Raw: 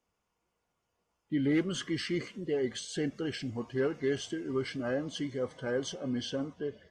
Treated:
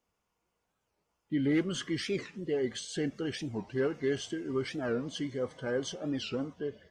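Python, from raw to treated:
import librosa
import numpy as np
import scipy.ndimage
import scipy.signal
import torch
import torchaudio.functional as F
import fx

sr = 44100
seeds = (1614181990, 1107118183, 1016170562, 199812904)

y = fx.record_warp(x, sr, rpm=45.0, depth_cents=250.0)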